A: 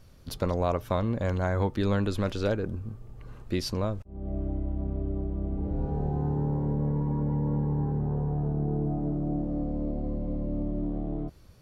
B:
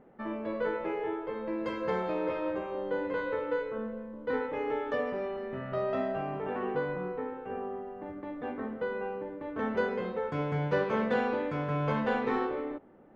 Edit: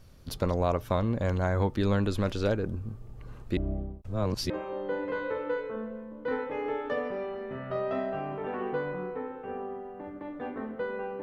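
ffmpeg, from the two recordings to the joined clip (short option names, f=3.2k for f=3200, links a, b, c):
-filter_complex "[0:a]apad=whole_dur=11.22,atrim=end=11.22,asplit=2[a][b];[a]atrim=end=3.572[c];[b]atrim=start=3.568:end=4.502,asetpts=PTS-STARTPTS,areverse[d];[1:a]atrim=start=2.518:end=9.24[e];[c][d]acrossfade=d=0.004:c1=hsin:c2=hsin[f];[f][e]acrossfade=d=0.004:c1=hsin:c2=hsin"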